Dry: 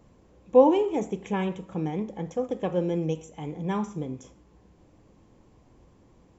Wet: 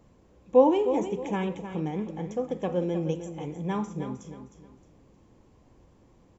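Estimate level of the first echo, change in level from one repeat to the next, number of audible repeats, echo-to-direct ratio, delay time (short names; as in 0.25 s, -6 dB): -10.0 dB, -10.0 dB, 3, -9.5 dB, 0.31 s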